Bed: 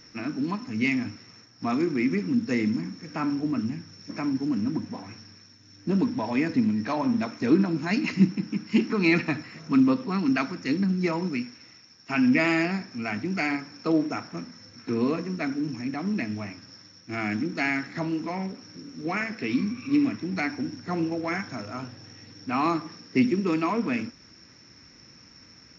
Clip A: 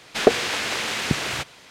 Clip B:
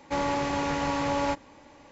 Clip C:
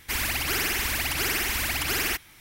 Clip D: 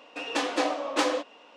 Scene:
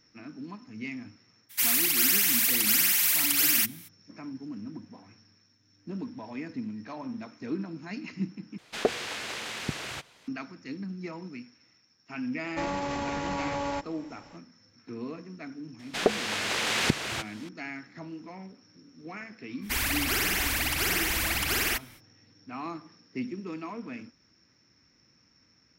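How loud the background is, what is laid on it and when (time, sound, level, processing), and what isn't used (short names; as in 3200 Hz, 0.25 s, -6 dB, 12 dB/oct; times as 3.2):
bed -12.5 dB
1.49 add C -8 dB, fades 0.02 s + tilt +4.5 dB/oct
8.58 replace with A -10 dB
12.46 add B -0.5 dB + limiter -22.5 dBFS
15.79 add A -8.5 dB + recorder AGC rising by 12 dB/s
19.61 add C -1 dB, fades 0.05 s
not used: D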